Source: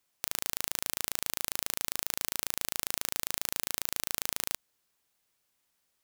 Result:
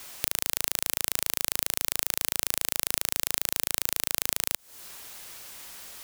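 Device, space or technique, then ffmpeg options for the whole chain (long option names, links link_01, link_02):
mastering chain: -filter_complex "[0:a]equalizer=frequency=180:width_type=o:width=2.3:gain=-4,acrossover=split=980|5400[link_01][link_02][link_03];[link_01]acompressor=threshold=-59dB:ratio=4[link_04];[link_02]acompressor=threshold=-55dB:ratio=4[link_05];[link_03]acompressor=threshold=-42dB:ratio=4[link_06];[link_04][link_05][link_06]amix=inputs=3:normalize=0,acompressor=threshold=-50dB:ratio=2.5,asoftclip=type=tanh:threshold=-26.5dB,alimiter=level_in=34dB:limit=-1dB:release=50:level=0:latency=1,volume=-1dB"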